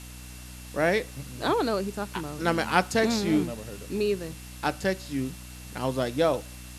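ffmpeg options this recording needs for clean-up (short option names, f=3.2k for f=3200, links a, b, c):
-af "adeclick=t=4,bandreject=f=61.6:t=h:w=4,bandreject=f=123.2:t=h:w=4,bandreject=f=184.8:t=h:w=4,bandreject=f=246.4:t=h:w=4,bandreject=f=308:t=h:w=4,bandreject=f=2.7k:w=30,afwtdn=0.005"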